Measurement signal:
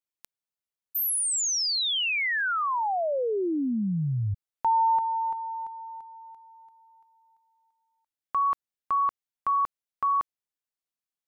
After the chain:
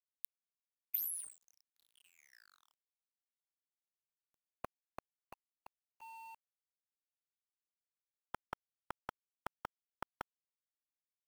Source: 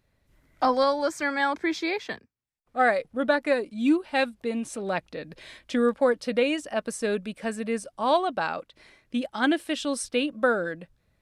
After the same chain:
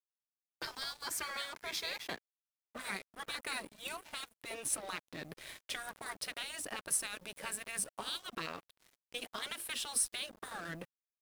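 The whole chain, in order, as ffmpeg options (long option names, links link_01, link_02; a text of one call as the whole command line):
ffmpeg -i in.wav -af "afftfilt=real='re*lt(hypot(re,im),0.1)':imag='im*lt(hypot(re,im),0.1)':win_size=1024:overlap=0.75,alimiter=level_in=3dB:limit=-24dB:level=0:latency=1:release=404,volume=-3dB,aexciter=amount=6.1:drive=2:freq=9300,aeval=exprs='sgn(val(0))*max(abs(val(0))-0.00376,0)':channel_layout=same,acrusher=bits=10:mix=0:aa=0.000001,volume=1.5dB" out.wav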